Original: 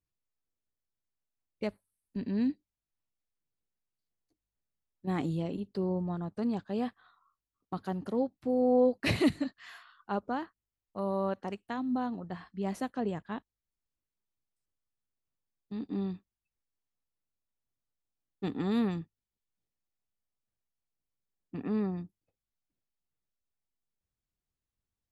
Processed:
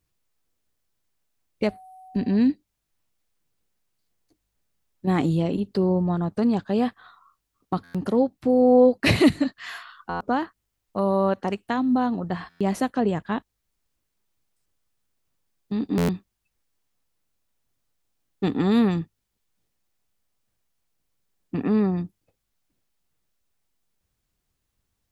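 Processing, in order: in parallel at -1.5 dB: compressor, threshold -39 dBFS, peak gain reduction 17 dB; 1.63–2.35 on the sum: whine 750 Hz -52 dBFS; stuck buffer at 7.83/10.09/12.49/15.97, samples 512, times 9; gain +8 dB

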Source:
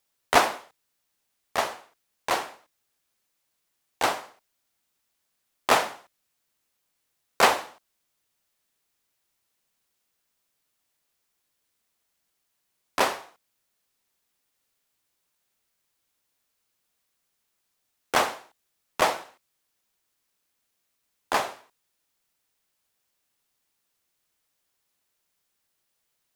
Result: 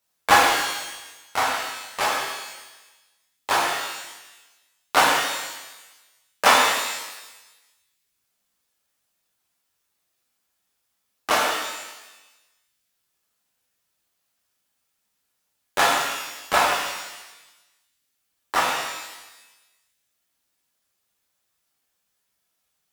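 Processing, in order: varispeed +15%; reverb removal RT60 1.3 s; shimmer reverb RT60 1.1 s, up +12 st, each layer -8 dB, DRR -5.5 dB; gain -1 dB

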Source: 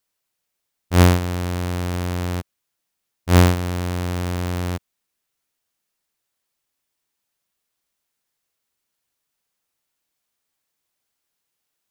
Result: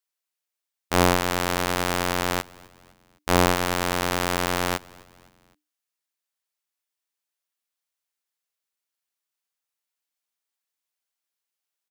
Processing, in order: HPF 740 Hz 6 dB/oct; sample leveller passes 3; on a send: frequency-shifting echo 0.257 s, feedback 50%, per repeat -100 Hz, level -24 dB; on the sum: gain -2 dB

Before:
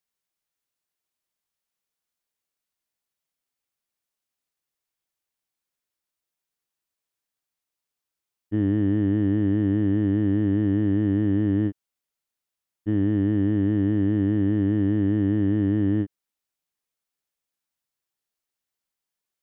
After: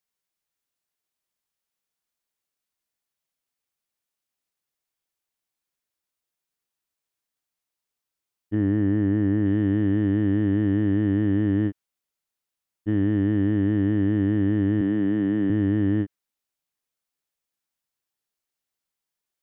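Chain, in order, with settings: 8.55–9.46 LPF 2400 Hz 12 dB/oct; dynamic EQ 1800 Hz, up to +4 dB, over -48 dBFS, Q 0.91; 14.81–15.5 HPF 130 Hz 24 dB/oct

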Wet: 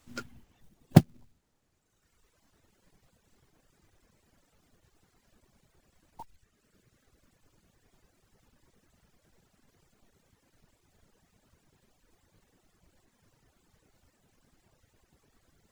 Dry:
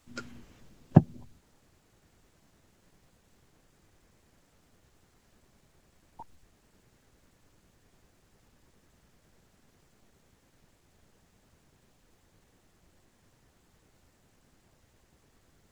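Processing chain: short-mantissa float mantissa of 2-bit; reverb removal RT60 1.8 s; gain +1 dB

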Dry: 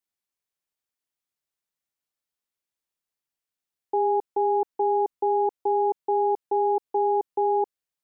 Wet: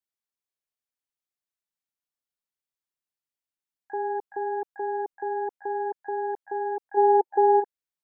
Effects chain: harmoniser +12 st -15 dB; spectral gain 6.97–7.6, 350–890 Hz +11 dB; gain -6.5 dB

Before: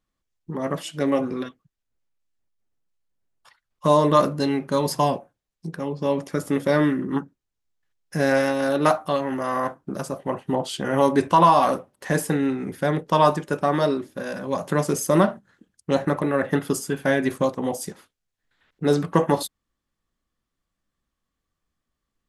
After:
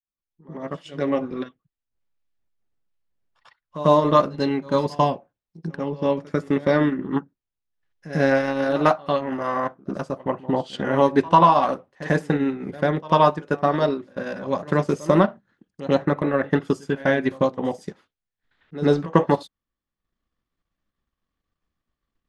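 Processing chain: opening faded in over 1.40 s; LPF 4400 Hz 12 dB/oct; reverse echo 96 ms -14.5 dB; transient shaper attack +3 dB, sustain -7 dB

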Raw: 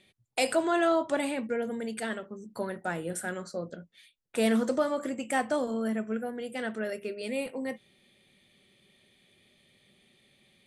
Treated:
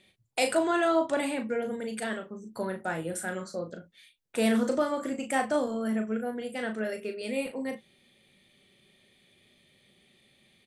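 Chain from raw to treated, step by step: doubler 37 ms -7 dB

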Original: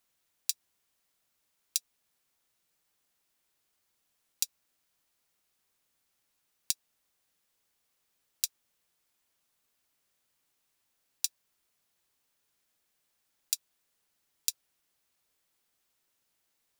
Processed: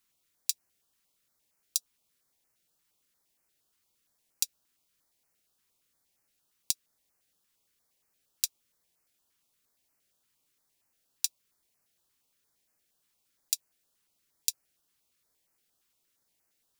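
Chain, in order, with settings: stepped notch 8.6 Hz 630–3500 Hz; gain +1.5 dB

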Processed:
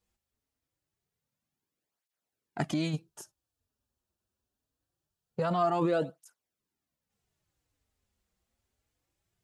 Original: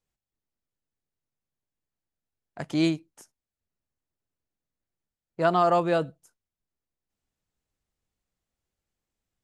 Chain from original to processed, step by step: 2.93–5.41 bell 2100 Hz -14.5 dB 0.23 oct; in parallel at +2 dB: negative-ratio compressor -30 dBFS, ratio -0.5; on the sum: tape flanging out of phase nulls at 0.24 Hz, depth 7.3 ms; gain -5 dB

